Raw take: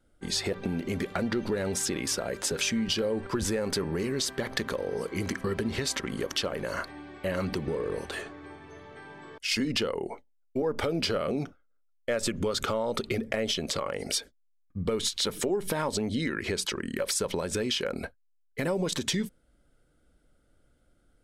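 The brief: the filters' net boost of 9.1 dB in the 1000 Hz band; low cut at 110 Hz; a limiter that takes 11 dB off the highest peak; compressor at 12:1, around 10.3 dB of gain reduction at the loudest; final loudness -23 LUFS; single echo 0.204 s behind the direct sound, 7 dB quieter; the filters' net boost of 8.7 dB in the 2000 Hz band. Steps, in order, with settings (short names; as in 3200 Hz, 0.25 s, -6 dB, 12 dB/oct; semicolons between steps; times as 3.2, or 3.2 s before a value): HPF 110 Hz; bell 1000 Hz +9 dB; bell 2000 Hz +8 dB; compressor 12:1, threshold -30 dBFS; limiter -25.5 dBFS; echo 0.204 s -7 dB; gain +13 dB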